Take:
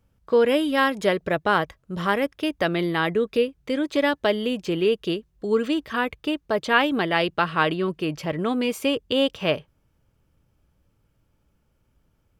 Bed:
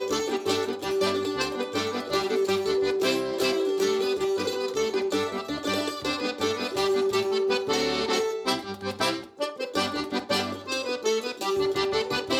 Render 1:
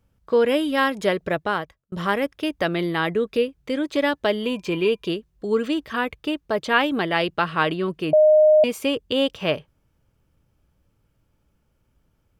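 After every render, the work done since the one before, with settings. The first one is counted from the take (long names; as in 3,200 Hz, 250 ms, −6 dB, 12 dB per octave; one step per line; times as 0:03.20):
0:01.32–0:01.92: fade out
0:04.42–0:05.08: hollow resonant body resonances 1,000/2,400 Hz, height 17 dB, ringing for 90 ms
0:08.13–0:08.64: beep over 615 Hz −10.5 dBFS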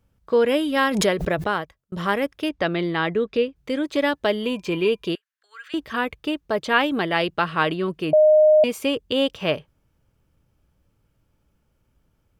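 0:00.76–0:01.54: background raised ahead of every attack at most 44 dB per second
0:02.49–0:03.56: low-pass filter 5,600 Hz
0:05.15–0:05.74: four-pole ladder high-pass 1,400 Hz, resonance 60%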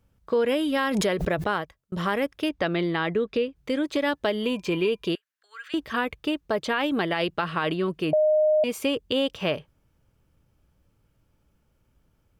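brickwall limiter −12.5 dBFS, peak gain reduction 7.5 dB
downward compressor 2 to 1, threshold −22 dBFS, peak gain reduction 4.5 dB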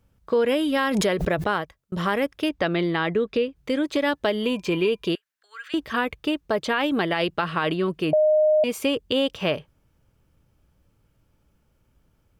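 level +2 dB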